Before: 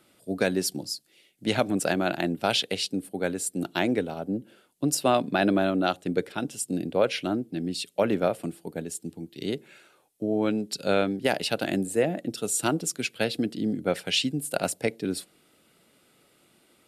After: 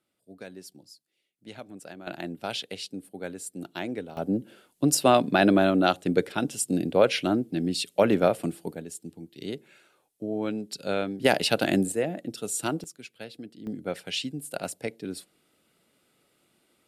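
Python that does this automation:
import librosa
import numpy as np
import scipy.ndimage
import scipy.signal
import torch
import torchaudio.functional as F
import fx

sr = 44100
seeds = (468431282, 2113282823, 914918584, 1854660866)

y = fx.gain(x, sr, db=fx.steps((0.0, -18.0), (2.07, -8.0), (4.17, 3.0), (8.75, -4.5), (11.2, 3.5), (11.92, -3.5), (12.84, -14.5), (13.67, -6.0)))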